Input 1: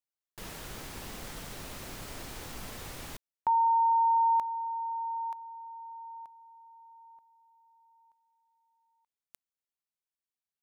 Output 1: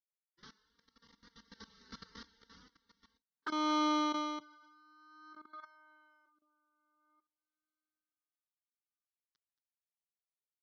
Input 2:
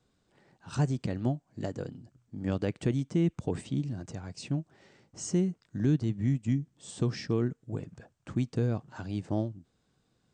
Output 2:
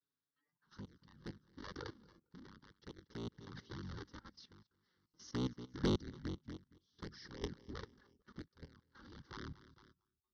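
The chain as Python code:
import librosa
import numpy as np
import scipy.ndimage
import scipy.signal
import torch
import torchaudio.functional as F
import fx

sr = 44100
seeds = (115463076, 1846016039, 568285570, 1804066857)

p1 = fx.cycle_switch(x, sr, every=3, mode='inverted')
p2 = fx.env_flanger(p1, sr, rest_ms=7.3, full_db=-22.5)
p3 = fx.vibrato(p2, sr, rate_hz=0.41, depth_cents=22.0)
p4 = scipy.signal.sosfilt(scipy.signal.butter(16, 6100.0, 'lowpass', fs=sr, output='sos'), p3)
p5 = fx.high_shelf(p4, sr, hz=2100.0, db=2.5)
p6 = fx.fixed_phaser(p5, sr, hz=2500.0, stages=6)
p7 = p6 + fx.echo_feedback(p6, sr, ms=227, feedback_pct=47, wet_db=-20.0, dry=0)
p8 = fx.noise_reduce_blind(p7, sr, reduce_db=18)
p9 = fx.highpass(p8, sr, hz=190.0, slope=6)
p10 = fx.level_steps(p9, sr, step_db=17)
p11 = 10.0 ** (-27.0 / 20.0) * np.tanh(p10 / 10.0 ** (-27.0 / 20.0))
p12 = p11 * 10.0 ** (-18 * (0.5 - 0.5 * np.cos(2.0 * np.pi * 0.52 * np.arange(len(p11)) / sr)) / 20.0)
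y = p12 * librosa.db_to_amplitude(5.0)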